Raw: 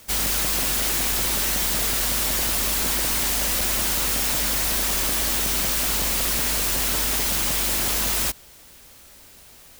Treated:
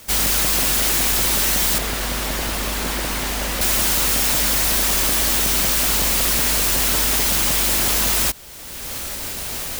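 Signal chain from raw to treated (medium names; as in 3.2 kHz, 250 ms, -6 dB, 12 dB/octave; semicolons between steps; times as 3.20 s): recorder AGC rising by 24 dB/s; 1.78–3.61 s: treble shelf 4 kHz -10 dB; trim +4.5 dB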